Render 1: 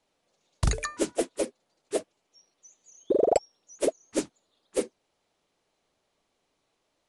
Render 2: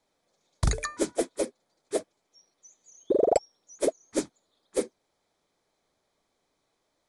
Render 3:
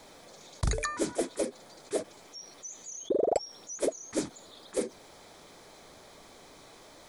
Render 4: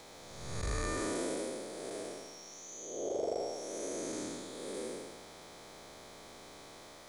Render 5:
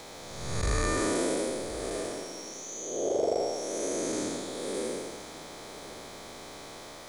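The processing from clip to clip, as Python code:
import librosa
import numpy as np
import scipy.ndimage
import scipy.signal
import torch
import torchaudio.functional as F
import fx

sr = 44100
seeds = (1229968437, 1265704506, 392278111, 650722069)

y1 = fx.notch(x, sr, hz=2800.0, q=5.2)
y2 = fx.env_flatten(y1, sr, amount_pct=50)
y2 = F.gain(torch.from_numpy(y2), -5.0).numpy()
y3 = fx.spec_blur(y2, sr, span_ms=381.0)
y3 = F.gain(torch.from_numpy(y3), 2.5).numpy()
y4 = y3 + 10.0 ** (-17.0 / 20.0) * np.pad(y3, (int(1071 * sr / 1000.0), 0))[:len(y3)]
y4 = F.gain(torch.from_numpy(y4), 7.5).numpy()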